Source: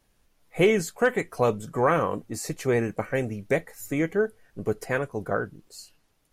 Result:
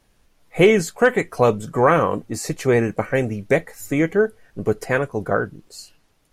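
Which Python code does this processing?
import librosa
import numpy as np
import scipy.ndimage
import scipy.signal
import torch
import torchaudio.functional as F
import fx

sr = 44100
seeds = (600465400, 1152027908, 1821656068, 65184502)

y = fx.high_shelf(x, sr, hz=11000.0, db=-6.5)
y = y * 10.0 ** (6.5 / 20.0)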